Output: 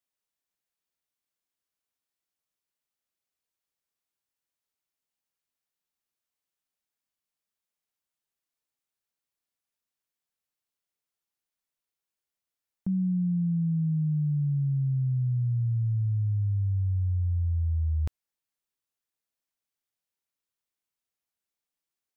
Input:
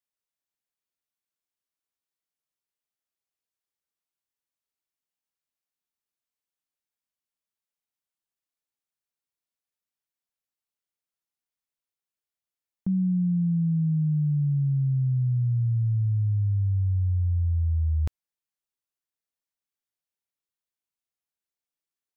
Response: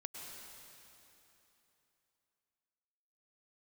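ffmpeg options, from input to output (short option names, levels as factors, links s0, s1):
-af "alimiter=level_in=1.06:limit=0.0631:level=0:latency=1:release=20,volume=0.944,volume=1.19"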